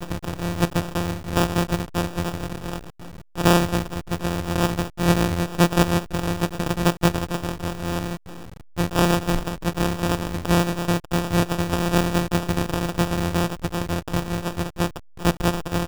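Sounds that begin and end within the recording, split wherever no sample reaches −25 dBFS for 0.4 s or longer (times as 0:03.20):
0:03.38–0:08.15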